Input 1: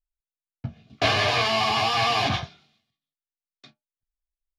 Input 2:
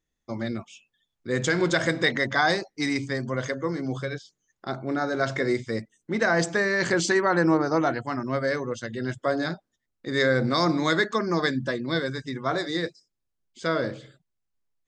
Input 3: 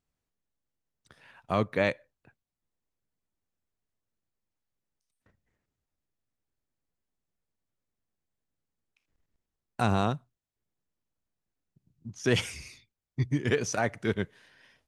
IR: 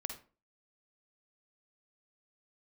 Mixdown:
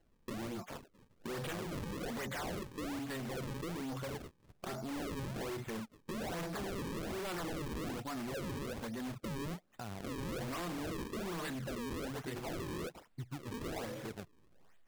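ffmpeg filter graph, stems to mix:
-filter_complex "[0:a]adelay=1400,volume=-11.5dB[a];[1:a]flanger=delay=3.5:depth=2.8:regen=47:speed=1:shape=triangular,aeval=exprs='0.282*sin(PI/2*3.55*val(0)/0.282)':c=same,volume=-0.5dB[b];[2:a]acontrast=70,alimiter=limit=-11dB:level=0:latency=1,volume=-18dB,asplit=2[c][d];[d]apad=whole_len=263809[e];[a][e]sidechaincompress=threshold=-57dB:ratio=8:attack=16:release=1060[f];[f][b]amix=inputs=2:normalize=0,asoftclip=type=tanh:threshold=-25dB,acompressor=threshold=-45dB:ratio=2,volume=0dB[g];[c][g]amix=inputs=2:normalize=0,acrusher=samples=36:mix=1:aa=0.000001:lfo=1:lforange=57.6:lforate=1.2,acompressor=threshold=-41dB:ratio=2.5"

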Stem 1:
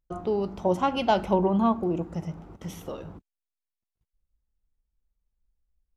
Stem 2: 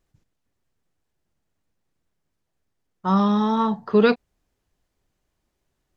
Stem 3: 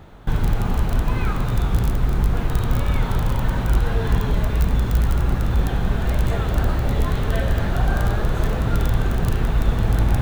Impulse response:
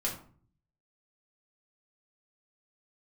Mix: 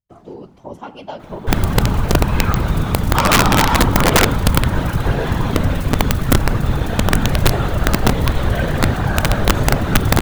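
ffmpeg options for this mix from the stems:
-filter_complex "[0:a]volume=-2dB[a];[1:a]asplit=2[b][c];[c]highpass=f=720:p=1,volume=29dB,asoftclip=type=tanh:threshold=-6dB[d];[b][d]amix=inputs=2:normalize=0,lowpass=f=2.4k:p=1,volume=-6dB,adelay=100,volume=1.5dB,asplit=2[e][f];[f]volume=-6dB[g];[2:a]acontrast=74,adelay=1200,volume=2.5dB,asplit=2[h][i];[i]volume=-7.5dB[j];[e][h]amix=inputs=2:normalize=0,highpass=240,alimiter=limit=-9.5dB:level=0:latency=1:release=57,volume=0dB[k];[3:a]atrim=start_sample=2205[l];[g][j]amix=inputs=2:normalize=0[m];[m][l]afir=irnorm=-1:irlink=0[n];[a][k][n]amix=inputs=3:normalize=0,afftfilt=real='hypot(re,im)*cos(2*PI*random(0))':imag='hypot(re,im)*sin(2*PI*random(1))':win_size=512:overlap=0.75,aeval=exprs='(mod(1.78*val(0)+1,2)-1)/1.78':c=same"

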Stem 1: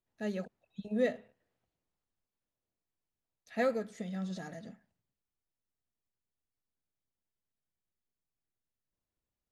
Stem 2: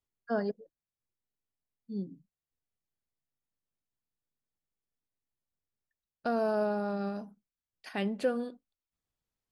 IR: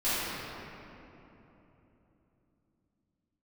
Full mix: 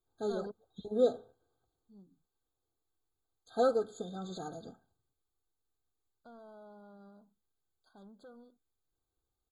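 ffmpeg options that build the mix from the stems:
-filter_complex "[0:a]aecho=1:1:2.5:0.66,volume=2.5dB,asplit=2[a][b];[1:a]asoftclip=type=tanh:threshold=-30dB,volume=-7.5dB[c];[b]apad=whole_len=419419[d];[c][d]sidechaingate=range=-12dB:threshold=-54dB:ratio=16:detection=peak[e];[a][e]amix=inputs=2:normalize=0,afftfilt=real='re*eq(mod(floor(b*sr/1024/1600),2),0)':imag='im*eq(mod(floor(b*sr/1024/1600),2),0)':win_size=1024:overlap=0.75"

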